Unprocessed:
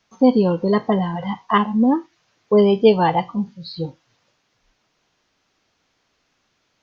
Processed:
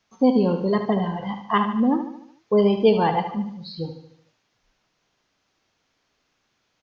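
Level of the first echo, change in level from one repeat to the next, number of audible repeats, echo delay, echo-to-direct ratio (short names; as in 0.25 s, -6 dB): -9.0 dB, -6.0 dB, 5, 74 ms, -7.5 dB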